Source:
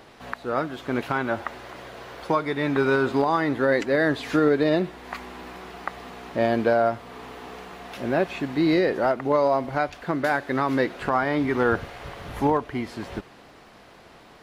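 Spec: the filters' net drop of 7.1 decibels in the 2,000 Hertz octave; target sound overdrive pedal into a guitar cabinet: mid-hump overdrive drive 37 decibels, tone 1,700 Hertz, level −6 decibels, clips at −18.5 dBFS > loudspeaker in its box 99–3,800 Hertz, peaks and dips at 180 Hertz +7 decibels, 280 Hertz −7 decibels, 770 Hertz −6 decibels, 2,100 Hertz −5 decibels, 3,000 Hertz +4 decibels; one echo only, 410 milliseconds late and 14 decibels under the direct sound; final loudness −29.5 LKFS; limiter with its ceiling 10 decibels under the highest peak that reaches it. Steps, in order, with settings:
parametric band 2,000 Hz −8.5 dB
brickwall limiter −20.5 dBFS
single-tap delay 410 ms −14 dB
mid-hump overdrive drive 37 dB, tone 1,700 Hz, level −6 dB, clips at −18.5 dBFS
loudspeaker in its box 99–3,800 Hz, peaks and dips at 180 Hz +7 dB, 280 Hz −7 dB, 770 Hz −6 dB, 2,100 Hz −5 dB, 3,000 Hz +4 dB
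level −2 dB

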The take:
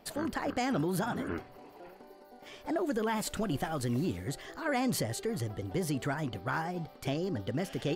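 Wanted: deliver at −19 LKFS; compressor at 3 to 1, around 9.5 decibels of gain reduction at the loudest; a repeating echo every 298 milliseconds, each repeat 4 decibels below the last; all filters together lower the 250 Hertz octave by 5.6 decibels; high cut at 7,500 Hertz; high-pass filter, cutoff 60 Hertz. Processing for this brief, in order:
high-pass filter 60 Hz
low-pass filter 7,500 Hz
parametric band 250 Hz −7.5 dB
downward compressor 3 to 1, threshold −43 dBFS
repeating echo 298 ms, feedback 63%, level −4 dB
level +24 dB

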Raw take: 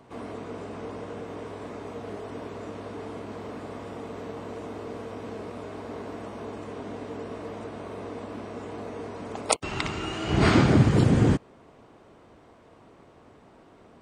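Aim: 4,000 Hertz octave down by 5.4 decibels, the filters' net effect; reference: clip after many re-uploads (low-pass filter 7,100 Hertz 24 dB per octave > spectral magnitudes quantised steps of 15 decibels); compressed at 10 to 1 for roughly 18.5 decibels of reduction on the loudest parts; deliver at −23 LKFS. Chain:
parametric band 4,000 Hz −7.5 dB
downward compressor 10 to 1, threshold −34 dBFS
low-pass filter 7,100 Hz 24 dB per octave
spectral magnitudes quantised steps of 15 dB
level +17 dB

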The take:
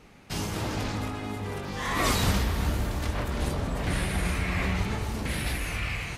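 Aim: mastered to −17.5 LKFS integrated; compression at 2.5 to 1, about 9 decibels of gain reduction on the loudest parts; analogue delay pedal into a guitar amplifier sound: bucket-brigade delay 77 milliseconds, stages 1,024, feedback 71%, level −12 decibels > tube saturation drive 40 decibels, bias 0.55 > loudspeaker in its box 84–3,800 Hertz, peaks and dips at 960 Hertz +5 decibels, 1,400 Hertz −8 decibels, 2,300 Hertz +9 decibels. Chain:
downward compressor 2.5 to 1, threshold −35 dBFS
bucket-brigade delay 77 ms, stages 1,024, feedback 71%, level −12 dB
tube saturation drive 40 dB, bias 0.55
loudspeaker in its box 84–3,800 Hz, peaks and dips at 960 Hz +5 dB, 1,400 Hz −8 dB, 2,300 Hz +9 dB
level +25.5 dB

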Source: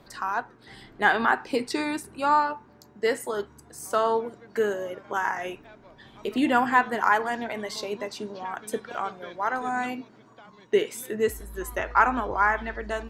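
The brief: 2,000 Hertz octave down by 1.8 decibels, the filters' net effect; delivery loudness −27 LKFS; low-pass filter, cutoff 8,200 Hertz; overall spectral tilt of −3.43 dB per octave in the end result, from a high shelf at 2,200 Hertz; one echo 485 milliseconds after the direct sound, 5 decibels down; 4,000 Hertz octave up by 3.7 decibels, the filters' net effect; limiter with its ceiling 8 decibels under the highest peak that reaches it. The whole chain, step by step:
low-pass filter 8,200 Hz
parametric band 2,000 Hz −5 dB
high-shelf EQ 2,200 Hz +4 dB
parametric band 4,000 Hz +3 dB
brickwall limiter −15 dBFS
single-tap delay 485 ms −5 dB
level +1.5 dB

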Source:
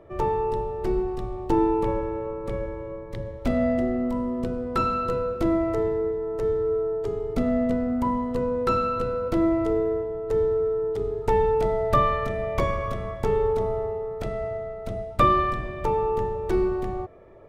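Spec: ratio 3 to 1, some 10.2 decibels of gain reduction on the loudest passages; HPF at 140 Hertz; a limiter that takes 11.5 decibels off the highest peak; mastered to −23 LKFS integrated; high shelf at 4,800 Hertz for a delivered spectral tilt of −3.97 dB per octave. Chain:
high-pass filter 140 Hz
high-shelf EQ 4,800 Hz −4 dB
downward compressor 3 to 1, threshold −29 dBFS
level +11 dB
brickwall limiter −16 dBFS

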